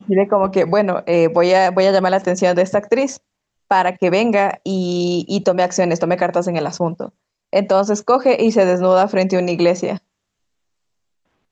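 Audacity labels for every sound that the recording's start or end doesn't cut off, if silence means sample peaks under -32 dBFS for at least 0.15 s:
3.710000	7.090000	sound
7.530000	9.980000	sound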